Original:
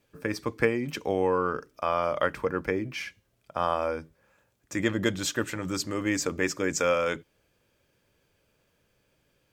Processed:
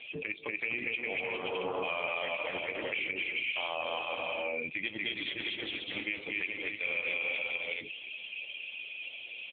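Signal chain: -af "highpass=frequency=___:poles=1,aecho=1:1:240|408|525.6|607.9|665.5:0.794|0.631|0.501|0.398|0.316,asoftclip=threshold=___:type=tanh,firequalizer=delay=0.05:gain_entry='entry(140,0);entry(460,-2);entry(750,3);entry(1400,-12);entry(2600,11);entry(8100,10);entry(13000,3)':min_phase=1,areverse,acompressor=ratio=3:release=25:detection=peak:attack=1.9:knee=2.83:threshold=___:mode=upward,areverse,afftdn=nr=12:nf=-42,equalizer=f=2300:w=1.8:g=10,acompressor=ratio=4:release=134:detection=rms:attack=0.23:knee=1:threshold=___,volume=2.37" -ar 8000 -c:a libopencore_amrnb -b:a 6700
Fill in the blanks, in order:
450, 0.237, 0.0178, 0.0178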